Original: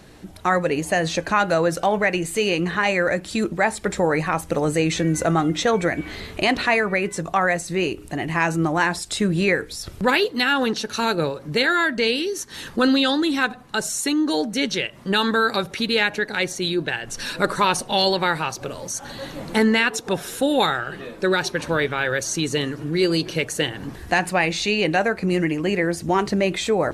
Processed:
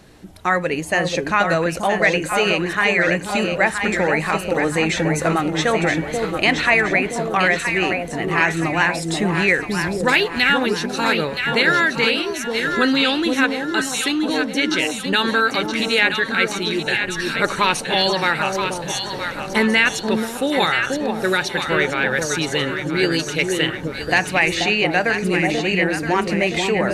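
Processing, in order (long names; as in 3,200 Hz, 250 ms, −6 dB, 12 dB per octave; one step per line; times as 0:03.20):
delay that swaps between a low-pass and a high-pass 486 ms, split 860 Hz, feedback 69%, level −3 dB
dynamic equaliser 2,200 Hz, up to +7 dB, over −34 dBFS, Q 1.2
level −1 dB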